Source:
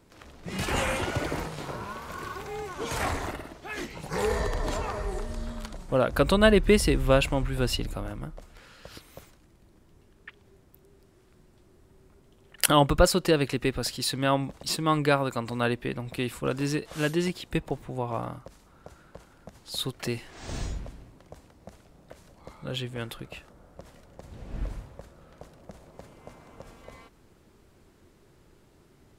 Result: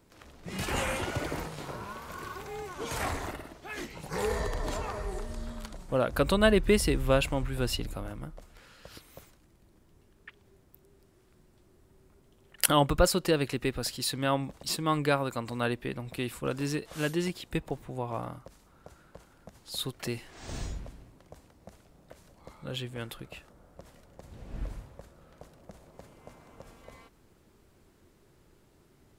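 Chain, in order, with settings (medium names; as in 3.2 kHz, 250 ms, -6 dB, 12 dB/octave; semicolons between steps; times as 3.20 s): treble shelf 11 kHz +5.5 dB; trim -3.5 dB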